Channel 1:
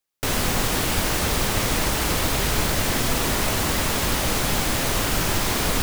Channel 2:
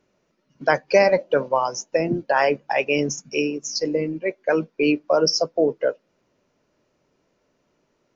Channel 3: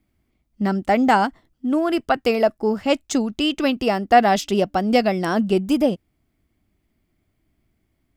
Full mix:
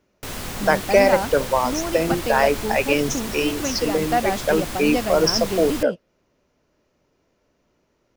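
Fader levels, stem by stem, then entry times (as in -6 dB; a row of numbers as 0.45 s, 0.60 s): -8.5 dB, +0.5 dB, -7.5 dB; 0.00 s, 0.00 s, 0.00 s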